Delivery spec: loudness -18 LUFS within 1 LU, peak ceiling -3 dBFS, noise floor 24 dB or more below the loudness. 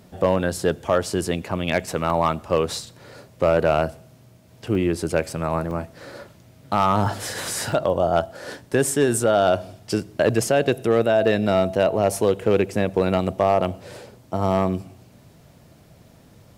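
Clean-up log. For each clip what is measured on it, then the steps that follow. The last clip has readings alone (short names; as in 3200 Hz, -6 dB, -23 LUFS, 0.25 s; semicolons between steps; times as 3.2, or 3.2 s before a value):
clipped 0.7%; flat tops at -9.5 dBFS; dropouts 5; longest dropout 1.5 ms; loudness -22.0 LUFS; peak -9.5 dBFS; loudness target -18.0 LUFS
-> clip repair -9.5 dBFS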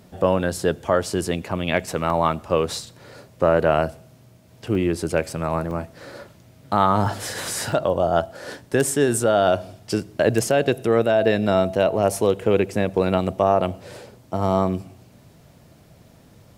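clipped 0.0%; dropouts 5; longest dropout 1.5 ms
-> interpolate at 2.1/4.75/5.71/7.06/7.72, 1.5 ms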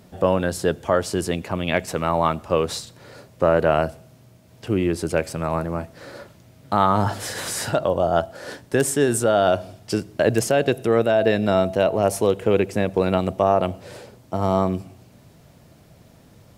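dropouts 0; loudness -22.0 LUFS; peak -3.0 dBFS; loudness target -18.0 LUFS
-> gain +4 dB; limiter -3 dBFS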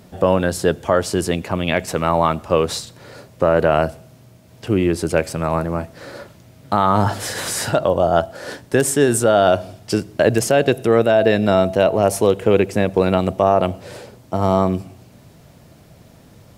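loudness -18.0 LUFS; peak -3.0 dBFS; noise floor -47 dBFS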